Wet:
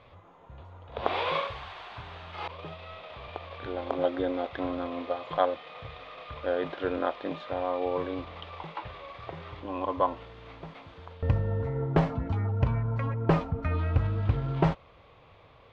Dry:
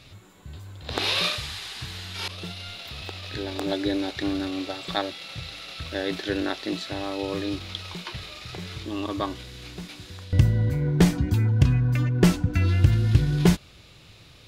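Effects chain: Chebyshev low-pass 2400 Hz, order 2; band shelf 800 Hz +11.5 dB; varispeed -8%; gain -6.5 dB

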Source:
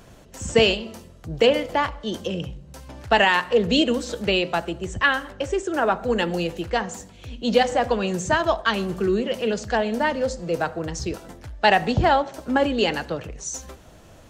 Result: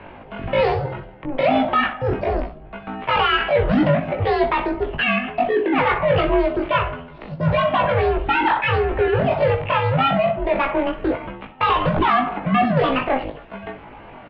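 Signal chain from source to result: three-band isolator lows -18 dB, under 150 Hz, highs -13 dB, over 2000 Hz; in parallel at +2 dB: limiter -15.5 dBFS, peak gain reduction 9 dB; on the sum: soft clip -19 dBFS, distortion -7 dB; pitch shift +10 st; on a send: early reflections 19 ms -5 dB, 62 ms -11.5 dB; on the sum: mistuned SSB -270 Hz 280–3400 Hz; gain +4 dB

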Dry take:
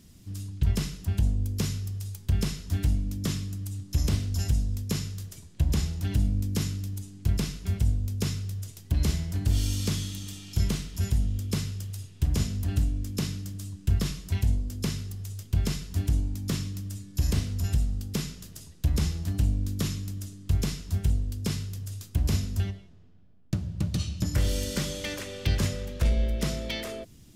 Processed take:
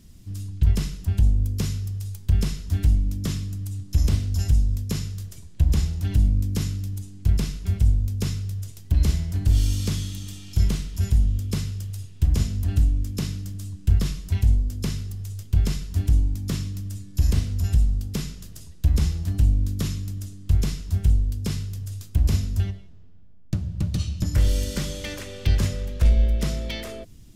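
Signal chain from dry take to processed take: low shelf 70 Hz +11.5 dB

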